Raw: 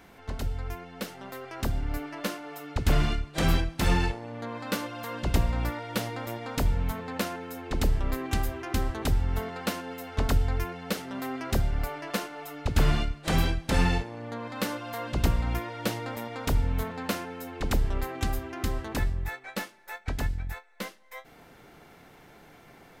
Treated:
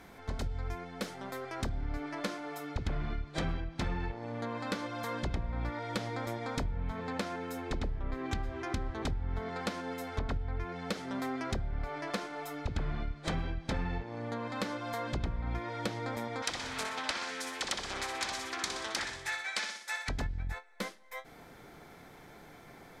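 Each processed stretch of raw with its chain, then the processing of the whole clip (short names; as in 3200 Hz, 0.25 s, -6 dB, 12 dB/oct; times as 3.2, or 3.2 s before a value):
16.42–20.09 weighting filter ITU-R 468 + feedback echo 61 ms, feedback 43%, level -6 dB + Doppler distortion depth 0.77 ms
whole clip: notch 2800 Hz, Q 9.9; treble ducked by the level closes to 2700 Hz, closed at -21.5 dBFS; compressor 6:1, threshold -31 dBFS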